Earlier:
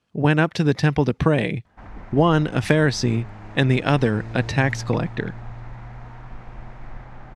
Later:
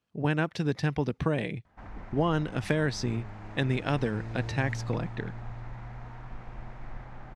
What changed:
speech -9.5 dB; background -4.0 dB

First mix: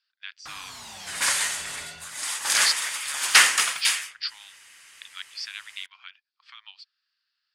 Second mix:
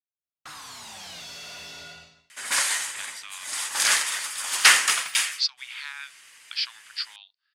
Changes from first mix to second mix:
speech: entry +2.75 s; second sound: entry +1.30 s; master: add high-pass 93 Hz 6 dB/octave

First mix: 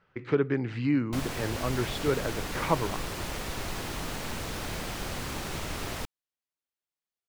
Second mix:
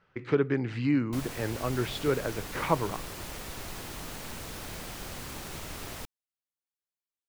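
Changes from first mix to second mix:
background -6.0 dB; master: add treble shelf 8 kHz +7.5 dB

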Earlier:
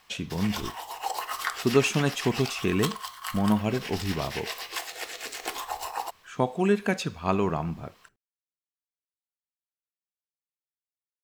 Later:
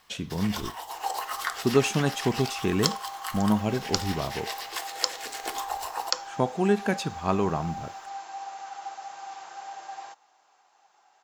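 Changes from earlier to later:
second sound: unmuted; master: add peaking EQ 2.5 kHz -4 dB 0.44 oct

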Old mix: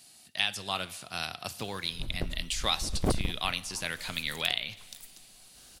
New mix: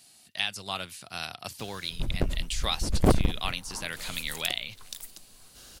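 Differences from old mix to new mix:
background +7.0 dB; reverb: off

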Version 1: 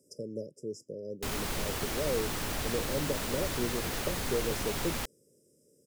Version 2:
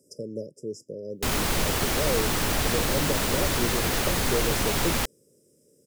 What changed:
speech +4.0 dB; background +9.0 dB

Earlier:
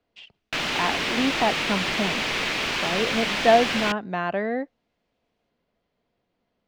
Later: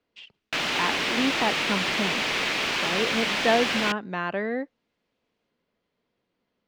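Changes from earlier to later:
speech: add peaking EQ 700 Hz -7 dB 0.43 oct; master: add bass shelf 100 Hz -10 dB

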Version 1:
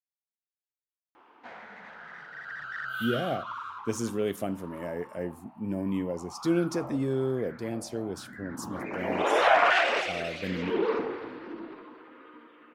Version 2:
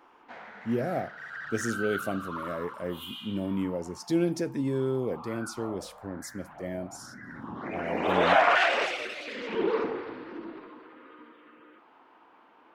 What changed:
speech: entry -2.35 s; first sound: entry -1.15 s

